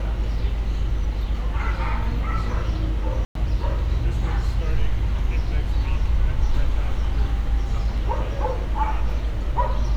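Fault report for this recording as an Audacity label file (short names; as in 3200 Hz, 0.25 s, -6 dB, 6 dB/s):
3.250000	3.350000	gap 0.103 s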